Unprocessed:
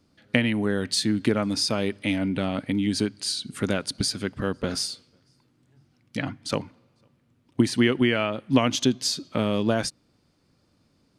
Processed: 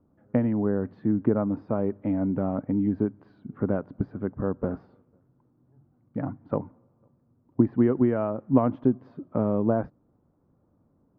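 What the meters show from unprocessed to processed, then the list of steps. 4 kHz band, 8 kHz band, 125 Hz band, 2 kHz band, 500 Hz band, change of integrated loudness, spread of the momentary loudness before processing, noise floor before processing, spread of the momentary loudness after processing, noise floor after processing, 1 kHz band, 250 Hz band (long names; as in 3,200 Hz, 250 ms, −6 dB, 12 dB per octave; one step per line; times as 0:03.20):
below −40 dB, below −40 dB, 0.0 dB, −16.5 dB, 0.0 dB, −1.5 dB, 9 LU, −66 dBFS, 12 LU, −67 dBFS, −2.5 dB, 0.0 dB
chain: low-pass filter 1,100 Hz 24 dB per octave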